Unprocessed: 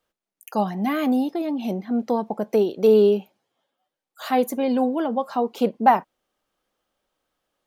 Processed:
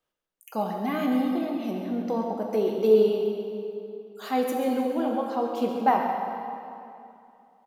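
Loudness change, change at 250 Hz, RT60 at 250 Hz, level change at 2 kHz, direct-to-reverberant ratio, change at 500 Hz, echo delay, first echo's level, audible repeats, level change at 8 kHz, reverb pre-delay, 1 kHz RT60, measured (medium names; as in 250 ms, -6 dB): -4.5 dB, -4.0 dB, 2.7 s, -3.5 dB, 0.0 dB, -3.0 dB, 135 ms, -10.0 dB, 1, no reading, 4 ms, 2.7 s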